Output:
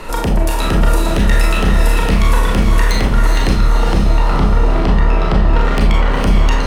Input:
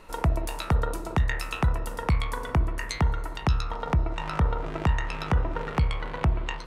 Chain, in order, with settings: 3.5–5.53 LPF 1100 Hz 6 dB/oct; sine folder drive 9 dB, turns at -12.5 dBFS; diffused feedback echo 0.463 s, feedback 45%, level -4 dB; Schroeder reverb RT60 0.32 s, combs from 27 ms, DRR 0.5 dB; three-band squash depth 40%; gain -1 dB

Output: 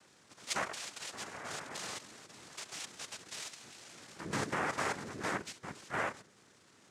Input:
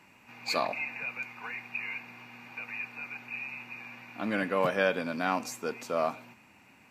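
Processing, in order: level quantiser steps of 10 dB; painted sound noise, 1.12–1.98, 360–820 Hz -44 dBFS; noise vocoder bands 3; gain -3.5 dB

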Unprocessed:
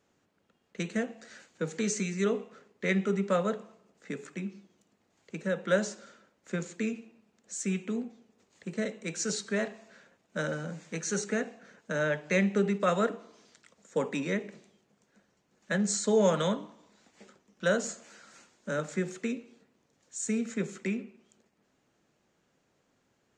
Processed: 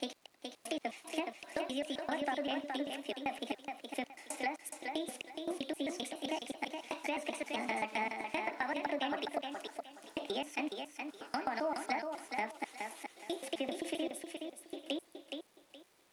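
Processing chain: slices in reverse order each 0.189 s, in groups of 5; low shelf 340 Hz -8 dB; compressor, threshold -36 dBFS, peak gain reduction 13 dB; treble ducked by the level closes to 450 Hz, closed at -30 dBFS; crackle 420/s -61 dBFS; wide varispeed 1.45×; on a send: thinning echo 0.42 s, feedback 26%, high-pass 200 Hz, level -5 dB; on the sum: gain +3 dB

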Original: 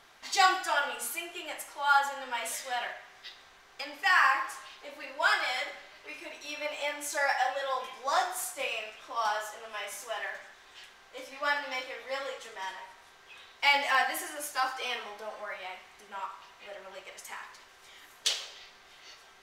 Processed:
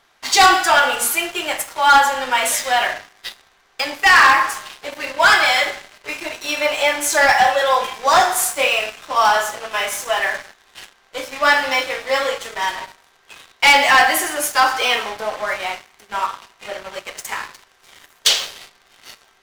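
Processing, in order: sample leveller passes 3; gain +5.5 dB

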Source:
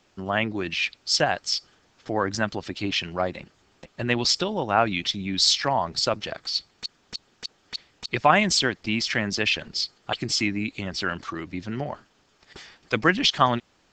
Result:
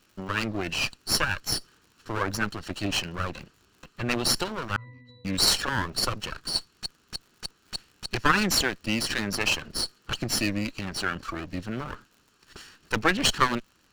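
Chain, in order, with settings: minimum comb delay 0.71 ms; crackle 85/s -46 dBFS; 4.76–5.25 octave resonator B, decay 0.73 s

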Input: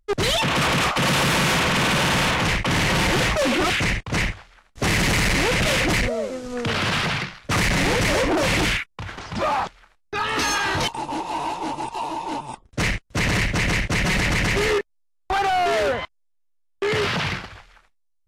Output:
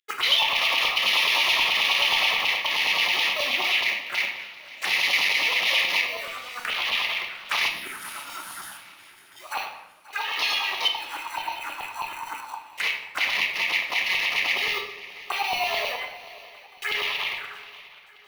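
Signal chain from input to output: Wiener smoothing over 9 samples; spectral gain 7.68–9.52, 420–9000 Hz -17 dB; in parallel at -7.5 dB: sample-rate reducer 1700 Hz, jitter 0%; on the sum: LFO high-pass saw down 9.4 Hz 970–3000 Hz; envelope phaser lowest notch 170 Hz, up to 1500 Hz, full sweep at -23 dBFS; swung echo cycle 0.71 s, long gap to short 3:1, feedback 41%, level -18.5 dB; reverb RT60 0.90 s, pre-delay 11 ms, DRR 3 dB

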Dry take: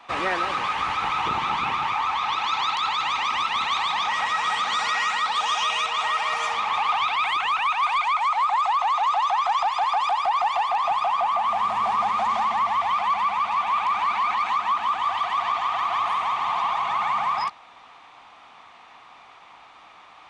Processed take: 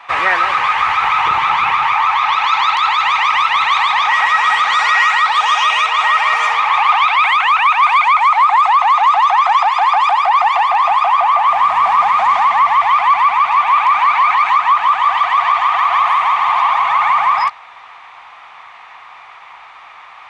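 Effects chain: ten-band EQ 250 Hz -10 dB, 1000 Hz +6 dB, 2000 Hz +9 dB; gain +4 dB

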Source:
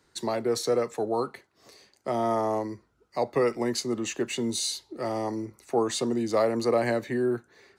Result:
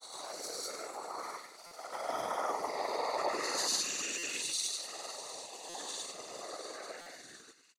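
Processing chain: spectral swells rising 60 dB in 1.34 s; Doppler pass-by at 2.74, 9 m/s, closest 1.8 m; limiter -28.5 dBFS, peak gain reduction 10 dB; HPF 710 Hz 12 dB/oct; high shelf 3200 Hz +7.5 dB; thin delay 0.672 s, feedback 71%, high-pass 2600 Hz, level -13 dB; Schroeder reverb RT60 1 s, combs from 26 ms, DRR -4 dB; gate -57 dBFS, range -7 dB; grains, pitch spread up and down by 0 st; whisperiser; stuck buffer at 1.66/4.18/5.69/7.01, samples 256, times 8; gain +2 dB

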